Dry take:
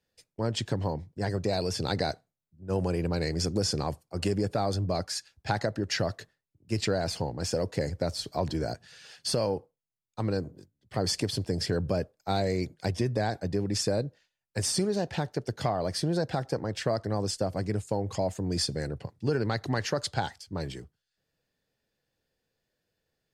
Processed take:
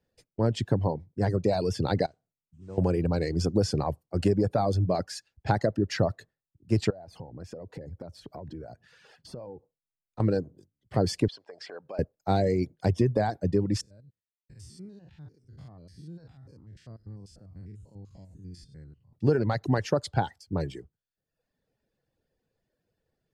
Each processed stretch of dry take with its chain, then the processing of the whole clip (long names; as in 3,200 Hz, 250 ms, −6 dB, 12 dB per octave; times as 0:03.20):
0:02.06–0:02.78: noise that follows the level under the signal 15 dB + downward compressor 2 to 1, threshold −55 dBFS + linear-phase brick-wall low-pass 9,000 Hz
0:06.90–0:10.20: parametric band 7,100 Hz −7 dB 2.4 octaves + downward compressor, threshold −42 dBFS
0:11.28–0:11.99: downward compressor 10 to 1, threshold −28 dBFS + high-pass filter 760 Hz + high-frequency loss of the air 110 metres
0:13.81–0:19.13: spectrum averaged block by block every 100 ms + guitar amp tone stack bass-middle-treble 6-0-2
whole clip: reverb reduction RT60 0.86 s; tilt shelving filter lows +6 dB, about 1,400 Hz